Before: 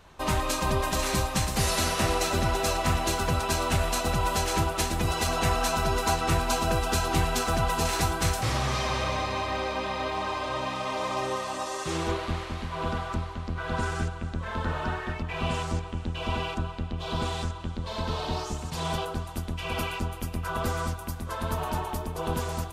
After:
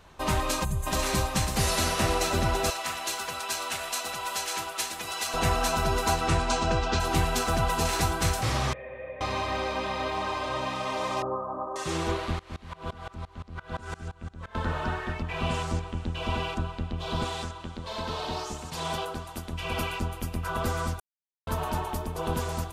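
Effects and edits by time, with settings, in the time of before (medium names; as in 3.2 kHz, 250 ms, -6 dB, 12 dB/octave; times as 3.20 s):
0.64–0.87 s: time-frequency box 200–6100 Hz -16 dB
2.70–5.34 s: high-pass 1.5 kHz 6 dB/octave
6.27–6.99 s: low-pass 9.7 kHz -> 5.6 kHz 24 dB/octave
8.73–9.21 s: cascade formant filter e
11.22–11.76 s: elliptic low-pass 1.3 kHz
12.39–14.55 s: sawtooth tremolo in dB swelling 5.8 Hz, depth 24 dB
17.24–19.53 s: bass shelf 200 Hz -8 dB
21.00–21.47 s: mute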